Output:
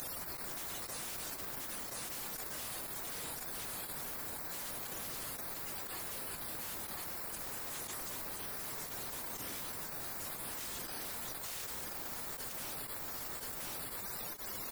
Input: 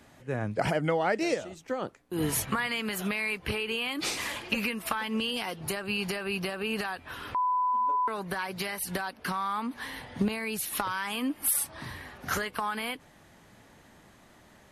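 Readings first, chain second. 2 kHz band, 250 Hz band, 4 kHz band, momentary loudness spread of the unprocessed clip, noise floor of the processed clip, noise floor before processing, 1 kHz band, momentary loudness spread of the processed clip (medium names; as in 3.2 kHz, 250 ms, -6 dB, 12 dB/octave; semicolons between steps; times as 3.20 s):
-14.5 dB, -19.0 dB, -10.0 dB, 9 LU, -45 dBFS, -57 dBFS, -17.0 dB, 0 LU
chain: RIAA curve recording; spectral gate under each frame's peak -30 dB weak; reverb removal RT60 1 s; spectral gate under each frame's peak -20 dB weak; treble shelf 10 kHz +11 dB; in parallel at -6 dB: sample-and-hold 14×; on the sum: tremolo triangle 2 Hz, depth 100%; sine folder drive 20 dB, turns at -50 dBFS; on a send: delay 1026 ms -14 dB; on the sum: level flattener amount 100%; trim +11 dB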